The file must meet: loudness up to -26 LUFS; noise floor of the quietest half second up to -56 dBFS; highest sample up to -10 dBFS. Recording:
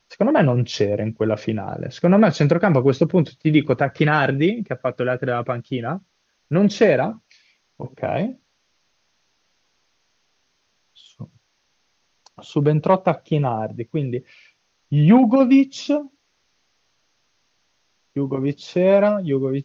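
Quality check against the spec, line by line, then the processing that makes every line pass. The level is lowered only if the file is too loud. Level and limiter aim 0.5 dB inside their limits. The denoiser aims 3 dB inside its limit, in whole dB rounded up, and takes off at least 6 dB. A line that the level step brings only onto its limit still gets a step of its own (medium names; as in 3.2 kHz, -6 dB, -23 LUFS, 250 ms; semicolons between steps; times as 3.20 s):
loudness -19.5 LUFS: fail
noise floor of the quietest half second -68 dBFS: pass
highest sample -3.5 dBFS: fail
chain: trim -7 dB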